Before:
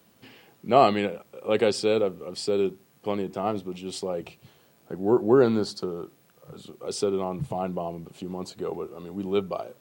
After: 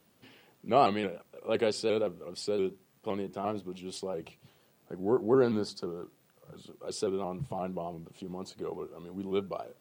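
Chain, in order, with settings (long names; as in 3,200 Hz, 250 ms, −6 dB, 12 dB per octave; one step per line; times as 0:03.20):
pitch modulation by a square or saw wave saw up 5.8 Hz, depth 100 cents
level −6 dB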